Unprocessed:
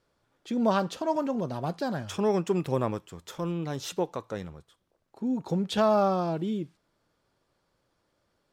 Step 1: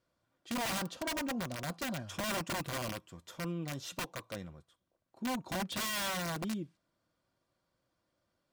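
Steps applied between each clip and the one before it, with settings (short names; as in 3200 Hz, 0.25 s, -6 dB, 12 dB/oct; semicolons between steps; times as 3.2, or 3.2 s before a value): wrapped overs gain 23 dB; notch comb 430 Hz; gain -6 dB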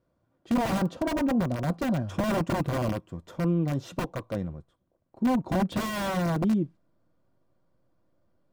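in parallel at -5.5 dB: backlash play -52.5 dBFS; on the sum: tilt shelf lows +9 dB, about 1300 Hz; gain +1 dB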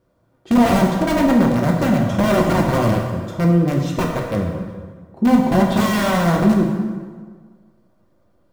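plate-style reverb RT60 1.6 s, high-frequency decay 0.7×, DRR -0.5 dB; gain +8 dB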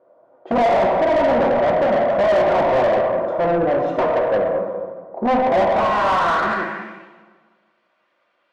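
band-pass sweep 620 Hz -> 2600 Hz, 5.67–7.05; overdrive pedal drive 25 dB, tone 1500 Hz, clips at -10.5 dBFS; gain +1.5 dB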